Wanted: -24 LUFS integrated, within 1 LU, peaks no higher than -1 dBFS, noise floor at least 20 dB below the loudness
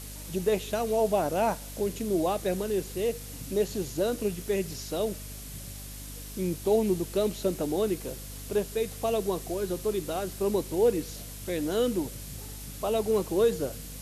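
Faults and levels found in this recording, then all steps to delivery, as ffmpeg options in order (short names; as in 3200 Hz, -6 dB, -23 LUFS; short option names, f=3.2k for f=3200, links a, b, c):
hum 50 Hz; harmonics up to 250 Hz; hum level -41 dBFS; noise floor -41 dBFS; noise floor target -50 dBFS; loudness -29.5 LUFS; peak -14.0 dBFS; loudness target -24.0 LUFS
-> -af "bandreject=f=50:t=h:w=4,bandreject=f=100:t=h:w=4,bandreject=f=150:t=h:w=4,bandreject=f=200:t=h:w=4,bandreject=f=250:t=h:w=4"
-af "afftdn=nr=9:nf=-41"
-af "volume=5.5dB"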